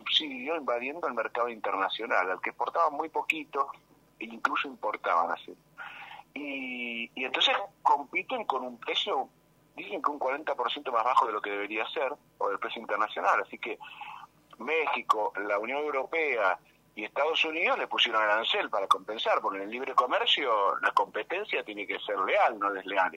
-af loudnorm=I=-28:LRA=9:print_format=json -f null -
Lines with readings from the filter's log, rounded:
"input_i" : "-28.9",
"input_tp" : "-9.5",
"input_lra" : "4.6",
"input_thresh" : "-39.3",